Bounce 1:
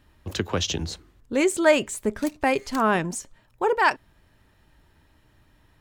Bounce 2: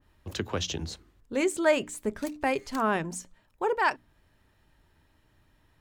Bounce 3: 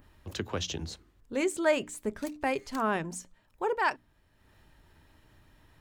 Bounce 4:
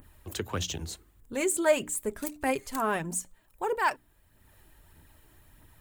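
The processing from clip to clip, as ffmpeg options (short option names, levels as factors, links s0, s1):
-af "bandreject=f=60:t=h:w=6,bandreject=f=120:t=h:w=6,bandreject=f=180:t=h:w=6,bandreject=f=240:t=h:w=6,bandreject=f=300:t=h:w=6,adynamicequalizer=threshold=0.0224:dfrequency=2100:dqfactor=0.7:tfrequency=2100:tqfactor=0.7:attack=5:release=100:ratio=0.375:range=2:mode=cutabove:tftype=highshelf,volume=0.562"
-af "acompressor=mode=upward:threshold=0.00398:ratio=2.5,volume=0.75"
-af "aphaser=in_gain=1:out_gain=1:delay=3.1:decay=0.38:speed=1.6:type=triangular,aexciter=amount=4.2:drive=4.1:freq=7400"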